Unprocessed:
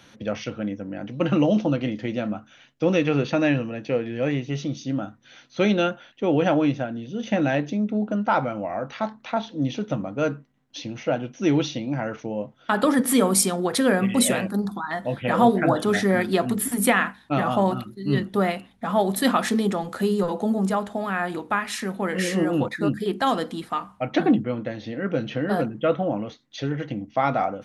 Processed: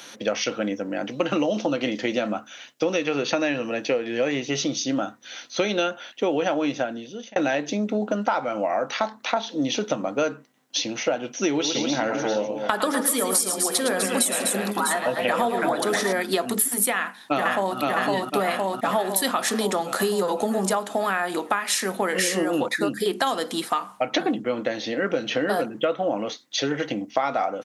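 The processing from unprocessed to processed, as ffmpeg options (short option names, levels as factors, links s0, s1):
-filter_complex "[0:a]asettb=1/sr,asplit=3[s0][s1][s2];[s0]atrim=end=11.504[s3];[s1]atrim=start=11.5:end=16.13,asetpts=PTS-STARTPTS,afade=t=in:d=0.004:c=qsin,afade=t=out:st=4.626:d=0.004:c=qsin,aecho=1:1:109|248|647:0.398|0.355|0.168,atrim=end_sample=204183[s4];[s2]atrim=start=16.126[s5];[s3][s4]acrossfade=d=0.004:c1=hsin:c2=qsin[s6];[s6][s5]acrossfade=d=0.004:c1=qsin:c2=hsin,asplit=2[s7][s8];[s8]afade=t=in:st=16.94:d=0.01,afade=t=out:st=17.78:d=0.01,aecho=0:1:510|1020|1530|2040|2550|3060|3570|4080|4590:0.749894|0.449937|0.269962|0.161977|0.0971863|0.0583118|0.0349871|0.0209922|0.0125953[s9];[s7][s9]amix=inputs=2:normalize=0,asplit=2[s10][s11];[s10]atrim=end=7.36,asetpts=PTS-STARTPTS,afade=t=out:st=6.79:d=0.57[s12];[s11]atrim=start=7.36,asetpts=PTS-STARTPTS,afade=t=in:d=0.004:c=hsin[s13];[s12][s13]concat=n=2:v=0:a=1,highpass=160,bass=f=250:g=-12,treble=f=4000:g=8,acompressor=threshold=0.0398:ratio=10,volume=2.66"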